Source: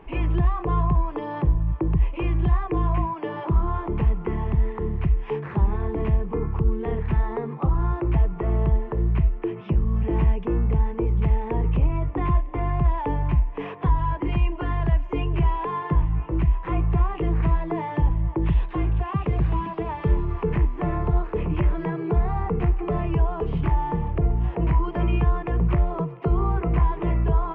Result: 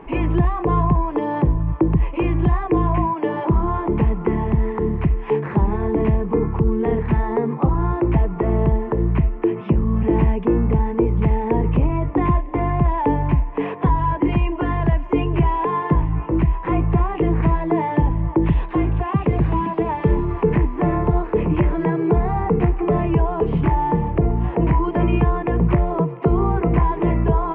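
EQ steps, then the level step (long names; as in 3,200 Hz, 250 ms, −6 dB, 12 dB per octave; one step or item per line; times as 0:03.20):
octave-band graphic EQ 125/250/500/1,000/2,000 Hz +3/+10/+5/+7/+5 dB
dynamic equaliser 1,200 Hz, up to −5 dB, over −36 dBFS, Q 2.8
0.0 dB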